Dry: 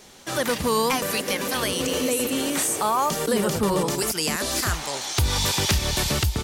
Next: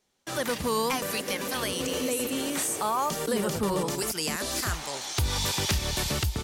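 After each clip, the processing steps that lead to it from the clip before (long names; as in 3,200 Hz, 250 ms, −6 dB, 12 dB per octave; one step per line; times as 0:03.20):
noise gate with hold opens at −30 dBFS
level −5 dB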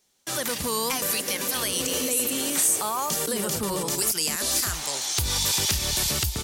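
brickwall limiter −20.5 dBFS, peak gain reduction 3.5 dB
high-shelf EQ 3,800 Hz +11.5 dB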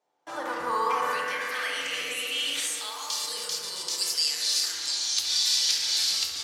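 bucket-brigade delay 66 ms, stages 1,024, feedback 83%, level −5 dB
band-pass filter sweep 750 Hz → 4,500 Hz, 0:00.03–0:03.23
feedback delay network reverb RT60 1.1 s, low-frequency decay 1×, high-frequency decay 0.45×, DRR 1 dB
level +3.5 dB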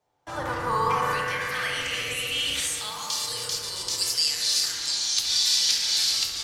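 sub-octave generator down 2 octaves, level +3 dB
level +2 dB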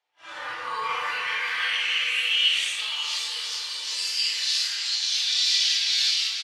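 random phases in long frames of 200 ms
resonant band-pass 2,700 Hz, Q 1.7
on a send: single-tap delay 544 ms −10 dB
on the sum: level +6.5 dB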